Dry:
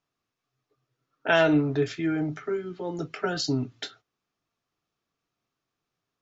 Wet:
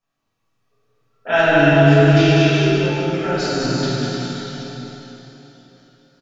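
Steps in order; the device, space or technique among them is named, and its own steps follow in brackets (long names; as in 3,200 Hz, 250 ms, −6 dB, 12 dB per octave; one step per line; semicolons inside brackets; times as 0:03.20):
tunnel (flutter between parallel walls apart 8.4 metres, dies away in 0.44 s; convolution reverb RT60 3.7 s, pre-delay 25 ms, DRR −3.5 dB)
0:02.16–0:02.67: flat-topped bell 4,000 Hz +14.5 dB
bouncing-ball delay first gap 200 ms, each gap 0.9×, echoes 5
rectangular room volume 430 cubic metres, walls furnished, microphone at 5.9 metres
level −6 dB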